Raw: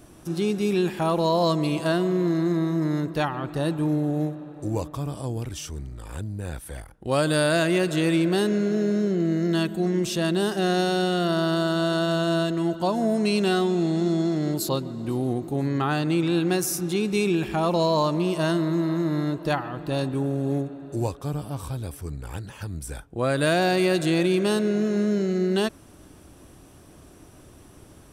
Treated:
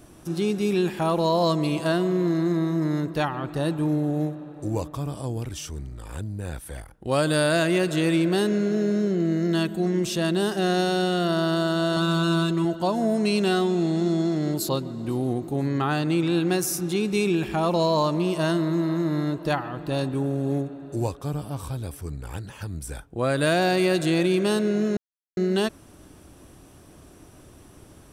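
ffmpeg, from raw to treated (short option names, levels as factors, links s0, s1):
-filter_complex "[0:a]asettb=1/sr,asplit=3[s0][s1][s2];[s0]atrim=end=11.964[s3];[s1]atrim=start=11.96:end=12.65,asetpts=PTS-STARTPTS,afade=t=in:d=0.004:c=qsin,afade=t=out:st=0.686:d=0.004:c=qsin,aecho=1:1:5.2:0.72,atrim=end_sample=30429[s4];[s2]atrim=start=12.646[s5];[s3][s4]acrossfade=d=0.004:c1=hsin:c2=qsin[s6];[s6][s5]acrossfade=d=0.004:c1=qsin:c2=hsin,asplit=3[s7][s8][s9];[s7]atrim=end=24.97,asetpts=PTS-STARTPTS,afade=t=out:st=24.966:d=0.004:c=hsin[s10];[s8]atrim=start=24.97:end=25.37,asetpts=PTS-STARTPTS,volume=0[s11];[s9]atrim=start=25.37,asetpts=PTS-STARTPTS,afade=t=in:d=0.004:c=hsin[s12];[s10][s11][s12]concat=n=3:v=0:a=1"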